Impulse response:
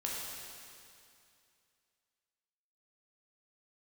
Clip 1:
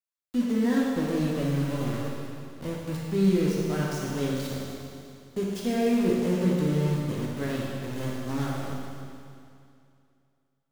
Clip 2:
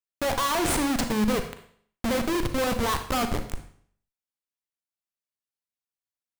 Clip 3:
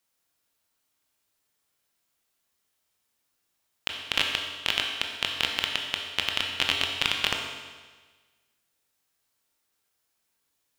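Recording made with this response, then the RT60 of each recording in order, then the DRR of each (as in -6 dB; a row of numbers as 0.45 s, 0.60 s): 1; 2.5 s, 0.55 s, 1.4 s; -4.5 dB, 7.0 dB, 1.5 dB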